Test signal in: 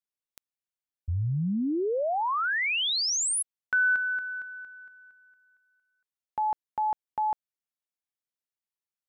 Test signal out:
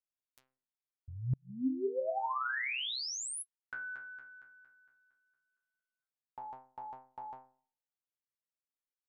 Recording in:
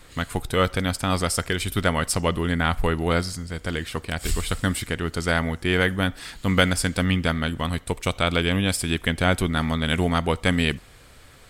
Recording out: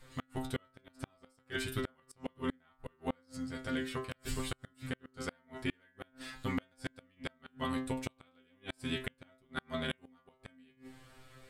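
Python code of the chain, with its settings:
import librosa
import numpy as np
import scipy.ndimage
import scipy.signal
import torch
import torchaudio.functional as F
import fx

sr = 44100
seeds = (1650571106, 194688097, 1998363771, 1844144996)

p1 = fx.comb_fb(x, sr, f0_hz=130.0, decay_s=0.46, harmonics='all', damping=0.5, mix_pct=100)
p2 = p1 + fx.echo_wet_lowpass(p1, sr, ms=65, feedback_pct=46, hz=970.0, wet_db=-20.5, dry=0)
p3 = fx.gate_flip(p2, sr, shuts_db=-29.0, range_db=-36)
y = p3 * 10.0 ** (5.5 / 20.0)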